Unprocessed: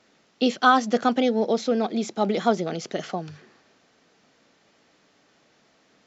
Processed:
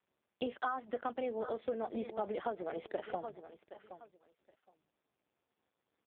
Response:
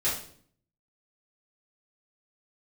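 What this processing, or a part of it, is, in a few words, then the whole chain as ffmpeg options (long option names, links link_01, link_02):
voicemail: -filter_complex "[0:a]asplit=3[link_01][link_02][link_03];[link_01]afade=type=out:start_time=1.38:duration=0.02[link_04];[link_02]asplit=2[link_05][link_06];[link_06]adelay=14,volume=-13dB[link_07];[link_05][link_07]amix=inputs=2:normalize=0,afade=type=in:start_time=1.38:duration=0.02,afade=type=out:start_time=2.39:duration=0.02[link_08];[link_03]afade=type=in:start_time=2.39:duration=0.02[link_09];[link_04][link_08][link_09]amix=inputs=3:normalize=0,anlmdn=0.398,highpass=380,lowpass=2600,aecho=1:1:769|1538:0.133|0.0267,acompressor=threshold=-30dB:ratio=8,volume=-2.5dB" -ar 8000 -c:a libopencore_amrnb -b:a 5150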